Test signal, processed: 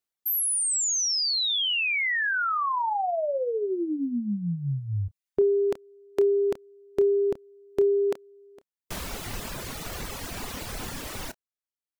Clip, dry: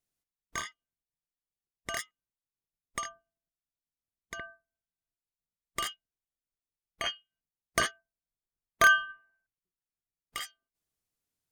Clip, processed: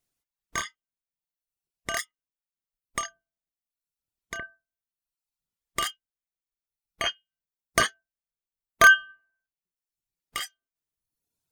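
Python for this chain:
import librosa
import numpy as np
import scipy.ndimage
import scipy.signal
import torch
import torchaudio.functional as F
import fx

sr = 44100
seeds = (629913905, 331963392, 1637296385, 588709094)

y = fx.doubler(x, sr, ms=29.0, db=-12.0)
y = fx.dereverb_blind(y, sr, rt60_s=1.0)
y = y * librosa.db_to_amplitude(5.5)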